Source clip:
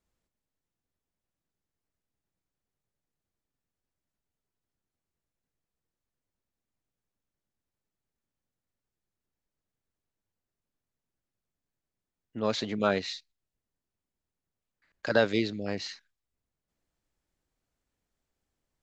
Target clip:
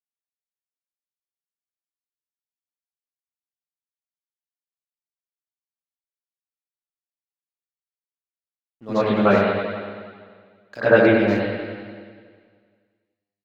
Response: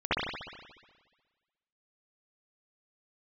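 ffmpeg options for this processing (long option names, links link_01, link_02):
-filter_complex "[0:a]aeval=exprs='sgn(val(0))*max(abs(val(0))-0.00266,0)':channel_layout=same,atempo=1.4[link_01];[1:a]atrim=start_sample=2205,asetrate=33957,aresample=44100[link_02];[link_01][link_02]afir=irnorm=-1:irlink=0,volume=-3dB"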